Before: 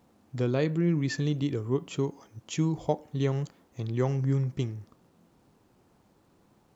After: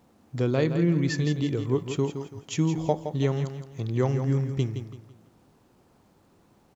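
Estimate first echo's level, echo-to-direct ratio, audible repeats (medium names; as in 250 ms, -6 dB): -9.0 dB, -8.5 dB, 3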